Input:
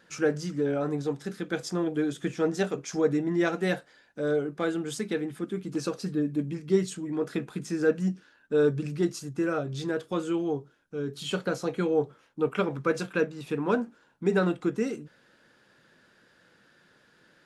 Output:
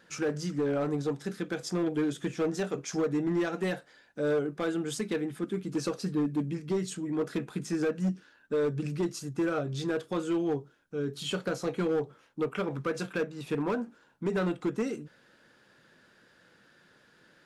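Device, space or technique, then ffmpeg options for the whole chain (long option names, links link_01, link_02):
limiter into clipper: -af "alimiter=limit=-19dB:level=0:latency=1:release=179,asoftclip=type=hard:threshold=-23.5dB"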